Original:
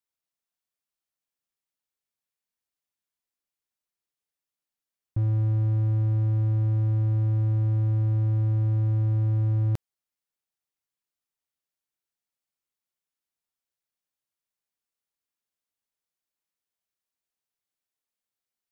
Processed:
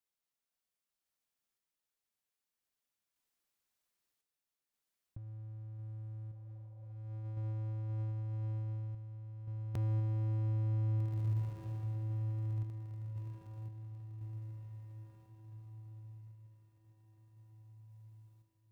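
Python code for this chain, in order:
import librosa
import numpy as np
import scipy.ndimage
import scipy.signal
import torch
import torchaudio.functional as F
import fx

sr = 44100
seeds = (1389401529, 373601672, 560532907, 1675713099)

y = fx.echo_diffused(x, sr, ms=1695, feedback_pct=45, wet_db=-8)
y = fx.over_compress(y, sr, threshold_db=-31.0, ratio=-0.5)
y = fx.tremolo_random(y, sr, seeds[0], hz=1.9, depth_pct=55)
y = fx.spec_repair(y, sr, seeds[1], start_s=6.36, length_s=0.57, low_hz=440.0, high_hz=1100.0, source='both')
y = y * librosa.db_to_amplitude(-2.0)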